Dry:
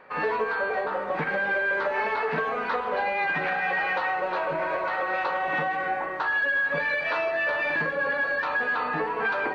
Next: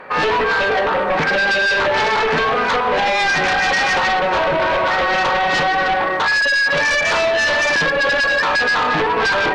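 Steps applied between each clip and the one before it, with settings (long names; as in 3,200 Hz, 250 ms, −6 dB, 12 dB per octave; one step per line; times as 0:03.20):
sine wavefolder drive 9 dB, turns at −15 dBFS
level +1.5 dB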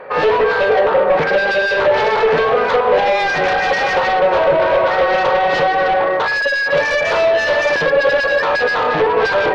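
graphic EQ with 10 bands 125 Hz +3 dB, 250 Hz −4 dB, 500 Hz +11 dB, 8,000 Hz −9 dB
level −2 dB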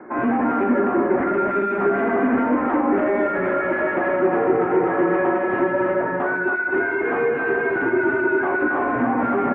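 single-sideband voice off tune −190 Hz 310–2,200 Hz
multi-tap delay 84/276 ms −10.5/−5 dB
level −6.5 dB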